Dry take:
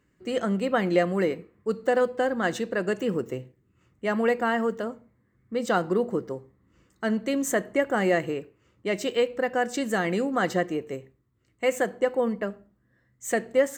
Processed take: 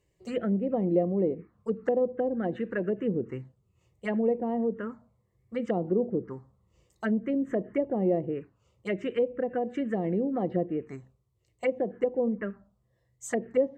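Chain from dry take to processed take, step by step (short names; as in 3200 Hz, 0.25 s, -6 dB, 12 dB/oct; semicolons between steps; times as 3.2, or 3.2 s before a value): wow and flutter 25 cents; envelope phaser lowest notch 240 Hz, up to 1500 Hz, full sweep at -21 dBFS; treble ducked by the level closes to 630 Hz, closed at -23.5 dBFS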